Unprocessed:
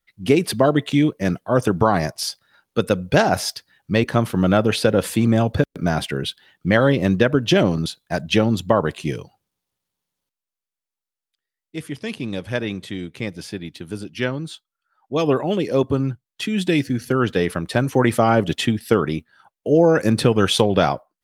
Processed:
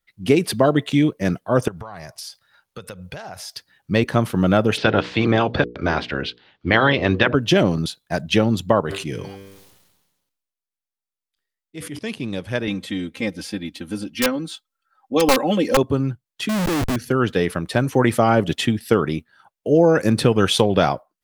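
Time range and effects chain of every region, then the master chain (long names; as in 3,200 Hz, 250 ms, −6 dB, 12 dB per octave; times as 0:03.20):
0:01.68–0:03.56: parametric band 280 Hz −11.5 dB 1.2 octaves + downward compressor 8 to 1, threshold −31 dBFS
0:04.76–0:07.34: ceiling on every frequency bin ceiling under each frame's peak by 15 dB + low-pass filter 4,400 Hz 24 dB per octave + mains-hum notches 60/120/180/240/300/360/420/480 Hz
0:08.80–0:11.99: tuned comb filter 98 Hz, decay 0.58 s, mix 50% + level that may fall only so fast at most 44 dB per second
0:12.67–0:15.77: wrap-around overflow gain 10 dB + comb filter 3.8 ms, depth 98%
0:16.49–0:16.96: low-pass filter 1,900 Hz 24 dB per octave + comparator with hysteresis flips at −35 dBFS
whole clip: no processing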